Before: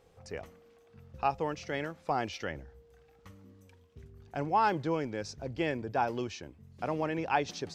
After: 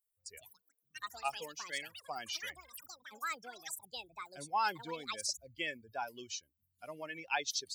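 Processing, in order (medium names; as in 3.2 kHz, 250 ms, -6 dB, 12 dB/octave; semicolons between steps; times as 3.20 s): expander on every frequency bin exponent 2; pre-emphasis filter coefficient 0.97; ever faster or slower copies 200 ms, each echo +7 st, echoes 3, each echo -6 dB; trim +13.5 dB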